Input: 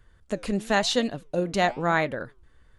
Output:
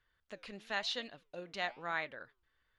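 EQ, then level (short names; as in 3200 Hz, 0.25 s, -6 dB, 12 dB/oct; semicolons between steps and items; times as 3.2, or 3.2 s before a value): air absorption 300 m; pre-emphasis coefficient 0.97; +4.0 dB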